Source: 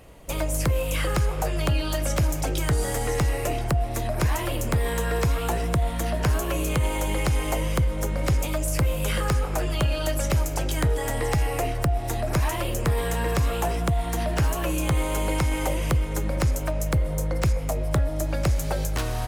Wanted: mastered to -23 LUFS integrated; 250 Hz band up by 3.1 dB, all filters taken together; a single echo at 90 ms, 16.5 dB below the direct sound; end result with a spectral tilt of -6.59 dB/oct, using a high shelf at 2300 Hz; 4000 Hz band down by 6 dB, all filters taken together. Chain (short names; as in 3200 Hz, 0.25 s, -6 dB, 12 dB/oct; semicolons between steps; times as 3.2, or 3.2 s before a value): bell 250 Hz +5 dB; high shelf 2300 Hz -5 dB; bell 4000 Hz -3.5 dB; echo 90 ms -16.5 dB; gain +2.5 dB